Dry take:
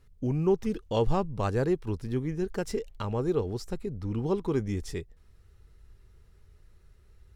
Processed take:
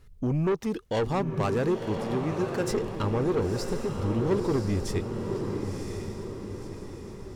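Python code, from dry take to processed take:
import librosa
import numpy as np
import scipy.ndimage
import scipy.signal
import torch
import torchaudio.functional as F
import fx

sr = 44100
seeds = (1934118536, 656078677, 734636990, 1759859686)

y = fx.highpass(x, sr, hz=210.0, slope=6, at=(0.52, 2.71))
y = 10.0 ** (-27.0 / 20.0) * np.tanh(y / 10.0 ** (-27.0 / 20.0))
y = fx.echo_diffused(y, sr, ms=1015, feedback_pct=50, wet_db=-5.0)
y = F.gain(torch.from_numpy(y), 5.5).numpy()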